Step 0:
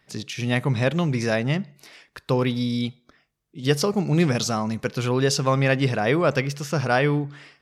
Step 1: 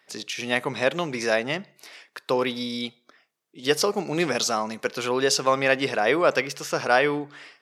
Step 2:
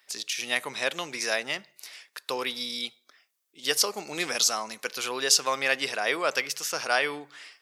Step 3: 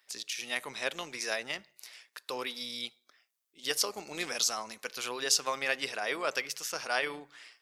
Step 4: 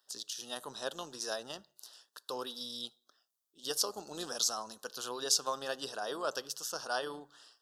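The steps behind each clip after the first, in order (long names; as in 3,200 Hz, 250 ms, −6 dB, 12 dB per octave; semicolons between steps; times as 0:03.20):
high-pass filter 380 Hz 12 dB per octave; level +2 dB
spectral tilt +3.5 dB per octave; level −5.5 dB
amplitude modulation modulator 120 Hz, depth 25%; level −4 dB
Butterworth band-reject 2,200 Hz, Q 1.3; level −2 dB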